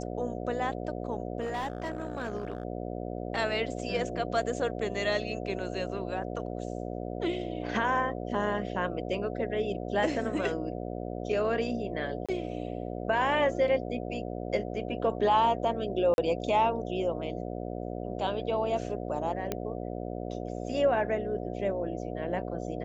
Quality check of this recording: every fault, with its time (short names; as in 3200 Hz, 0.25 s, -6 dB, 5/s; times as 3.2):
buzz 60 Hz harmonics 12 -36 dBFS
1.4–2.65 clipped -28.5 dBFS
12.26–12.29 gap 26 ms
16.14–16.18 gap 41 ms
19.52 pop -16 dBFS